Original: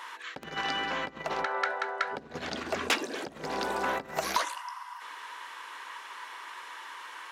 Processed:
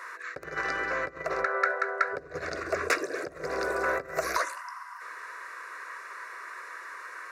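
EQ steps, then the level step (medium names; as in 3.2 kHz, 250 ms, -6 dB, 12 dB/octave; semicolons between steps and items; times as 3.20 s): treble shelf 6.5 kHz -7.5 dB; static phaser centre 860 Hz, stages 6; +5.5 dB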